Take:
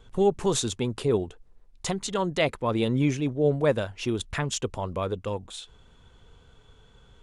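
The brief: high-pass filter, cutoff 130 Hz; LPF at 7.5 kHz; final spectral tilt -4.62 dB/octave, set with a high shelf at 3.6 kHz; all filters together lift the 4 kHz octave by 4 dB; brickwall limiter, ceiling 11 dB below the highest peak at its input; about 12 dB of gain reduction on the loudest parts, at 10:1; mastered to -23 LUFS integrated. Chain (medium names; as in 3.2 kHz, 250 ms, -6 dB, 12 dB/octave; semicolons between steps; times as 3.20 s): high-pass 130 Hz; low-pass 7.5 kHz; treble shelf 3.6 kHz -6.5 dB; peaking EQ 4 kHz +9 dB; compression 10:1, threshold -30 dBFS; trim +16.5 dB; peak limiter -12.5 dBFS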